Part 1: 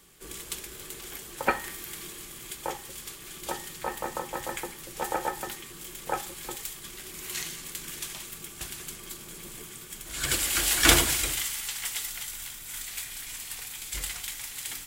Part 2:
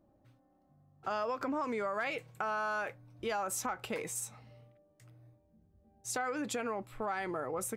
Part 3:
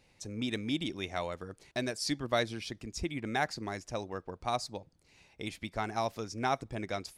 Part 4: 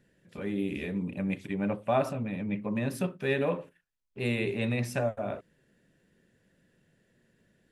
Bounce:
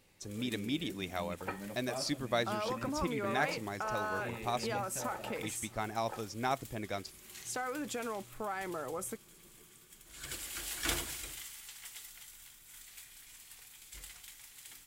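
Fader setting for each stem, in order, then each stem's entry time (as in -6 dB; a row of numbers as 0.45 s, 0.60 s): -15.5 dB, -2.5 dB, -2.5 dB, -15.0 dB; 0.00 s, 1.40 s, 0.00 s, 0.00 s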